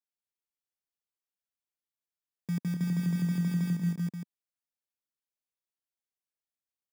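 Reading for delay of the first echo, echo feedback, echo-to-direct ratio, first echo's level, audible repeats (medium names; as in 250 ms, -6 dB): 187 ms, no regular repeats, 0.0 dB, -7.0 dB, 4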